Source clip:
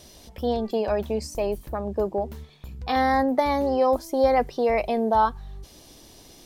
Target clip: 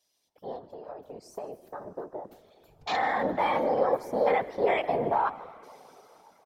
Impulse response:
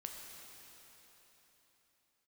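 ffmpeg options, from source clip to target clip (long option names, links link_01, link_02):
-filter_complex "[0:a]highpass=frequency=1200:poles=1,afwtdn=0.0112,asettb=1/sr,asplit=3[link_01][link_02][link_03];[link_01]atrim=end=0.584[link_04];[link_02]atrim=start=0.58:end=2.25,asetpts=PTS-STARTPTS,afade=type=in:duration=0.004:curve=qsin,afade=type=out:start_time=1.666:duration=0.004:curve=qsin,acompressor=threshold=-41dB:ratio=6[link_05];[link_03]atrim=start=2.246[link_06];[link_04][link_05]acrossfade=duration=0.004:curve1=hsin:curve2=qsin[link_07];[link_07][link_06]acrossfade=duration=0.004:curve1=qsin:curve2=hsin,alimiter=limit=-23dB:level=0:latency=1:release=17,dynaudnorm=framelen=370:gausssize=5:maxgain=13dB,asplit=4[link_08][link_09][link_10][link_11];[link_09]adelay=151,afreqshift=-96,volume=-19dB[link_12];[link_10]adelay=302,afreqshift=-192,volume=-28.4dB[link_13];[link_11]adelay=453,afreqshift=-288,volume=-37.7dB[link_14];[link_08][link_12][link_13][link_14]amix=inputs=4:normalize=0,asplit=2[link_15][link_16];[1:a]atrim=start_sample=2205[link_17];[link_16][link_17]afir=irnorm=-1:irlink=0,volume=-10.5dB[link_18];[link_15][link_18]amix=inputs=2:normalize=0,afftfilt=real='hypot(re,im)*cos(2*PI*random(0))':imag='hypot(re,im)*sin(2*PI*random(1))':win_size=512:overlap=0.75,volume=-3dB"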